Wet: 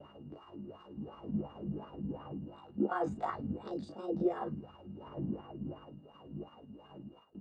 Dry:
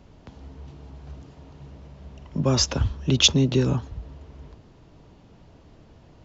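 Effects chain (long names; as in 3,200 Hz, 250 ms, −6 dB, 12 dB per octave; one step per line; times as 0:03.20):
wind on the microphone 110 Hz −28 dBFS
downward compressor 4 to 1, threshold −25 dBFS, peak gain reduction 12 dB
steady tone 2,100 Hz −50 dBFS
double-tracking delay 19 ms −2.5 dB
wrong playback speed 33 rpm record played at 45 rpm
noise gate with hold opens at −32 dBFS
time stretch by overlap-add 1.6×, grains 108 ms
LFO wah 2.8 Hz 200–1,200 Hz, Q 3.9
dynamic equaliser 940 Hz, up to +4 dB, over −45 dBFS, Q 0.88
level +3 dB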